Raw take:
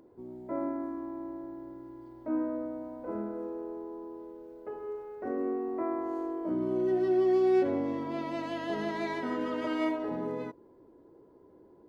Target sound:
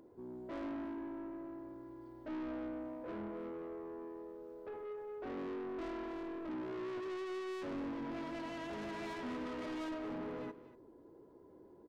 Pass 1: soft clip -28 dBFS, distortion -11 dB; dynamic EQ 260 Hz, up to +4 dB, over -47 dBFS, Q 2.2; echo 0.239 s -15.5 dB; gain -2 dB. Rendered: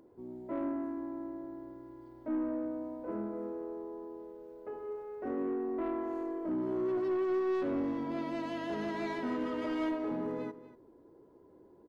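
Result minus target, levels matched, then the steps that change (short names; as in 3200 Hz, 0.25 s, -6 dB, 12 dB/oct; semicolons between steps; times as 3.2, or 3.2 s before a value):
soft clip: distortion -8 dB
change: soft clip -39.5 dBFS, distortion -4 dB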